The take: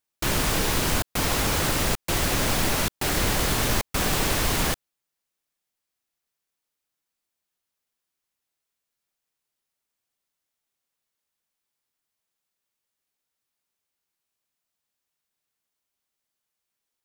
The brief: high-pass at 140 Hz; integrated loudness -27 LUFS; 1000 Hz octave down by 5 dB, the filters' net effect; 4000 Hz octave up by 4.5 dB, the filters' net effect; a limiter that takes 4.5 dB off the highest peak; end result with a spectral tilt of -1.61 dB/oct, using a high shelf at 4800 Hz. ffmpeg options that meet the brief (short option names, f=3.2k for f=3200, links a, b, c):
-af "highpass=140,equalizer=f=1k:t=o:g=-7,equalizer=f=4k:t=o:g=3.5,highshelf=f=4.8k:g=5,volume=-4.5dB,alimiter=limit=-18.5dB:level=0:latency=1"